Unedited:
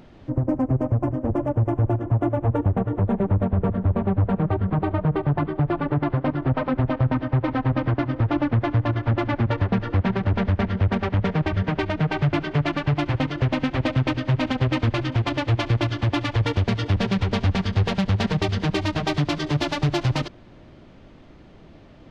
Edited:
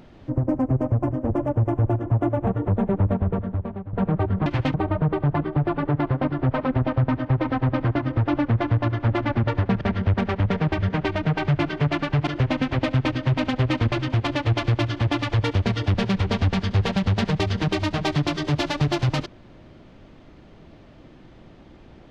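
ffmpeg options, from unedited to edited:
-filter_complex "[0:a]asplit=7[a][b][c][d][e][f][g];[a]atrim=end=2.472[h];[b]atrim=start=2.778:end=4.24,asetpts=PTS-STARTPTS,afade=t=out:st=0.652:d=0.81:silence=0.125893[i];[c]atrim=start=4.24:end=4.772,asetpts=PTS-STARTPTS,afade=t=in:d=0.004:c=hsin:silence=0.125893[j];[d]atrim=start=13.008:end=13.292[k];[e]atrim=start=4.768:end=9.842[l];[f]atrim=start=10.548:end=13.012[m];[g]atrim=start=13.288[n];[i][j]concat=n=2:v=0:a=1[o];[h][o]acrossfade=d=0.004:c1=hsin:c2=hsin[p];[p][k]acrossfade=d=0.004:c1=hsin:c2=hsin[q];[q][l]acrossfade=d=0.004:c1=hsin:c2=hsin[r];[r][m]acrossfade=d=0.004:c1=hsin:c2=hsin[s];[s][n]acrossfade=d=0.004:c1=hsin:c2=hsin"

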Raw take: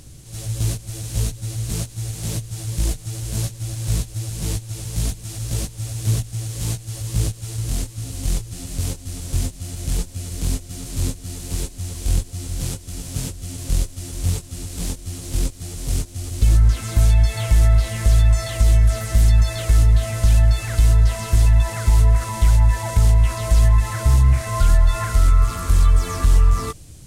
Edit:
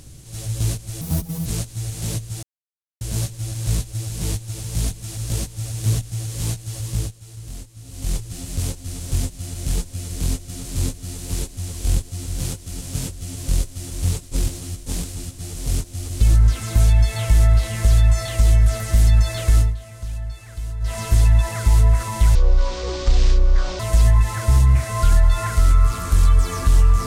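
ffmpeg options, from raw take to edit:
-filter_complex "[0:a]asplit=13[a][b][c][d][e][f][g][h][i][j][k][l][m];[a]atrim=end=1.014[n];[b]atrim=start=1.01:end=1.67,asetpts=PTS-STARTPTS,asetrate=64827,aresample=44100[o];[c]atrim=start=1.666:end=2.64,asetpts=PTS-STARTPTS,afade=t=out:st=0.97:d=0.004:c=hsin[p];[d]atrim=start=2.64:end=3.22,asetpts=PTS-STARTPTS,volume=0[q];[e]atrim=start=3.22:end=7.41,asetpts=PTS-STARTPTS,afade=t=in:d=0.004:c=hsin,afade=t=out:st=3.82:d=0.37:silence=0.281838[r];[f]atrim=start=7.41:end=8.05,asetpts=PTS-STARTPTS,volume=-11dB[s];[g]atrim=start=8.05:end=14.442,asetpts=PTS-STARTPTS,afade=t=in:d=0.37:silence=0.281838[t];[h]atrim=start=14.438:end=15.592,asetpts=PTS-STARTPTS,areverse[u];[i]atrim=start=15.588:end=19.96,asetpts=PTS-STARTPTS,afade=t=out:st=4.202:d=0.17:silence=0.188365[v];[j]atrim=start=19.96:end=21.01,asetpts=PTS-STARTPTS,volume=-14.5dB[w];[k]atrim=start=21.01:end=22.564,asetpts=PTS-STARTPTS,afade=t=in:d=0.17:silence=0.188365[x];[l]atrim=start=22.56:end=23.37,asetpts=PTS-STARTPTS,asetrate=24696,aresample=44100,atrim=end_sample=63787,asetpts=PTS-STARTPTS[y];[m]atrim=start=23.366[z];[n][o]acrossfade=d=0.004:c1=hsin:c2=hsin[aa];[p][q][r][s][t]concat=n=5:v=0:a=1[ab];[aa][ab]acrossfade=d=0.004:c1=hsin:c2=hsin[ac];[ac][u]acrossfade=d=0.004:c1=hsin:c2=hsin[ad];[v][w][x]concat=n=3:v=0:a=1[ae];[ad][ae]acrossfade=d=0.004:c1=hsin:c2=hsin[af];[af][y]acrossfade=d=0.004:c1=hsin:c2=hsin[ag];[ag][z]acrossfade=d=0.004:c1=hsin:c2=hsin"

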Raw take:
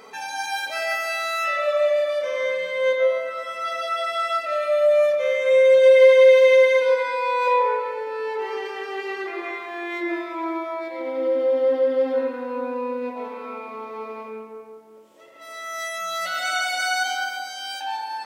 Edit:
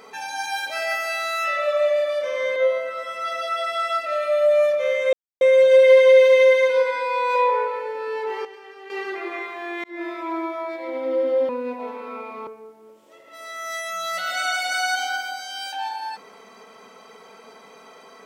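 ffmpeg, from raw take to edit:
-filter_complex "[0:a]asplit=8[a][b][c][d][e][f][g][h];[a]atrim=end=2.562[i];[b]atrim=start=2.958:end=5.53,asetpts=PTS-STARTPTS,afade=t=out:st=2.568:d=0.004:c=hsin,apad=pad_dur=0.28[j];[c]atrim=start=5.53:end=8.572,asetpts=PTS-STARTPTS,afade=t=in:d=0.004:c=hsin[k];[d]atrim=start=8.568:end=9.022,asetpts=PTS-STARTPTS,volume=-11.5dB[l];[e]atrim=start=9.018:end=9.96,asetpts=PTS-STARTPTS,afade=t=out:st=0.938:d=0.004:c=hsin[m];[f]atrim=start=9.96:end=11.612,asetpts=PTS-STARTPTS,afade=t=in:d=0.28[n];[g]atrim=start=12.858:end=13.842[o];[h]atrim=start=14.548[p];[j][k]concat=n=2:v=0:a=1[q];[i][q]acrossfade=d=0.004:c1=hsin:c2=hsin[r];[r][l]acrossfade=d=0.004:c1=hsin:c2=hsin[s];[m][n]concat=n=2:v=0:a=1[t];[s][t]acrossfade=d=0.004:c1=hsin:c2=hsin[u];[u][o]acrossfade=d=0.004:c1=hsin:c2=hsin[v];[v][p]acrossfade=d=0.004:c1=hsin:c2=hsin"

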